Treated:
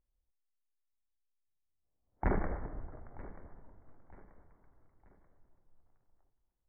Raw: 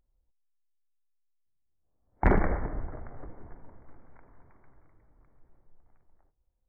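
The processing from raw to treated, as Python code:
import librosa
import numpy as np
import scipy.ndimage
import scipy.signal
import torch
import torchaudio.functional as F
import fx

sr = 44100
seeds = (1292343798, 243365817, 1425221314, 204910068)

p1 = scipy.signal.sosfilt(scipy.signal.butter(2, 2100.0, 'lowpass', fs=sr, output='sos'), x)
p2 = p1 + fx.echo_feedback(p1, sr, ms=934, feedback_pct=39, wet_db=-18.5, dry=0)
y = p2 * librosa.db_to_amplitude(-8.5)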